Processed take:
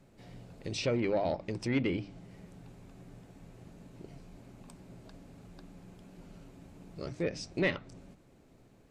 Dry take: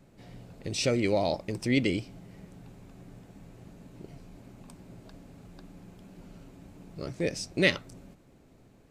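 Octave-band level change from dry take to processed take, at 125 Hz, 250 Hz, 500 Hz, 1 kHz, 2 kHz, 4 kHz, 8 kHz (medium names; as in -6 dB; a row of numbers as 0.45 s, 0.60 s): -3.5 dB, -4.0 dB, -3.5 dB, -3.0 dB, -6.5 dB, -8.0 dB, -8.5 dB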